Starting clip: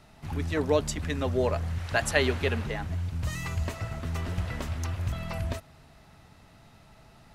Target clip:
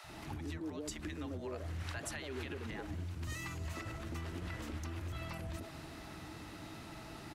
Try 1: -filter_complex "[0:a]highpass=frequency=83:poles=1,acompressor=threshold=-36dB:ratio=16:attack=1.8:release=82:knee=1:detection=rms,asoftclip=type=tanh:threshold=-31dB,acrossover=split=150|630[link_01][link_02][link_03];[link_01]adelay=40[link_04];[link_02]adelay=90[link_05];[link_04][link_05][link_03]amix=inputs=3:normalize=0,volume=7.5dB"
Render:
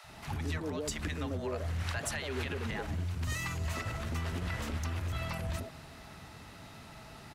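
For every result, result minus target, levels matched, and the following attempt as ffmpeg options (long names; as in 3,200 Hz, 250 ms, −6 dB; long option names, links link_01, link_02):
downward compressor: peak gain reduction −7.5 dB; 250 Hz band −3.5 dB
-filter_complex "[0:a]highpass=frequency=83:poles=1,acompressor=threshold=-43.5dB:ratio=16:attack=1.8:release=82:knee=1:detection=rms,asoftclip=type=tanh:threshold=-31dB,acrossover=split=150|630[link_01][link_02][link_03];[link_01]adelay=40[link_04];[link_02]adelay=90[link_05];[link_04][link_05][link_03]amix=inputs=3:normalize=0,volume=7.5dB"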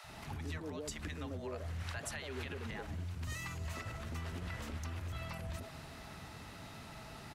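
250 Hz band −3.0 dB
-filter_complex "[0:a]highpass=frequency=83:poles=1,equalizer=frequency=320:width=6.1:gain=14,acompressor=threshold=-43.5dB:ratio=16:attack=1.8:release=82:knee=1:detection=rms,asoftclip=type=tanh:threshold=-31dB,acrossover=split=150|630[link_01][link_02][link_03];[link_01]adelay=40[link_04];[link_02]adelay=90[link_05];[link_04][link_05][link_03]amix=inputs=3:normalize=0,volume=7.5dB"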